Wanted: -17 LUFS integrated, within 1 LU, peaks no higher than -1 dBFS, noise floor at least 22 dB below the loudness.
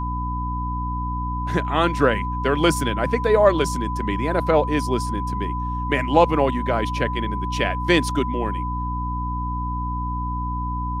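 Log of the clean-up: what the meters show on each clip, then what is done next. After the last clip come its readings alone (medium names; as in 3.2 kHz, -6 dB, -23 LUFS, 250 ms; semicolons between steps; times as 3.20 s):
hum 60 Hz; highest harmonic 300 Hz; hum level -25 dBFS; steady tone 1 kHz; tone level -27 dBFS; loudness -22.5 LUFS; peak level -2.0 dBFS; loudness target -17.0 LUFS
-> de-hum 60 Hz, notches 5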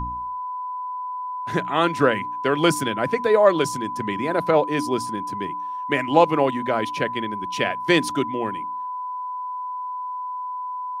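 hum not found; steady tone 1 kHz; tone level -27 dBFS
-> band-stop 1 kHz, Q 30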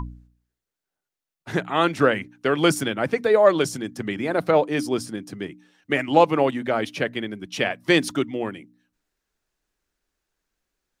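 steady tone not found; loudness -22.5 LUFS; peak level -2.5 dBFS; loudness target -17.0 LUFS
-> trim +5.5 dB; peak limiter -1 dBFS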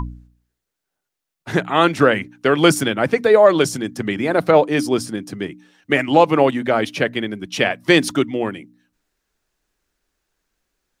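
loudness -17.5 LUFS; peak level -1.0 dBFS; noise floor -81 dBFS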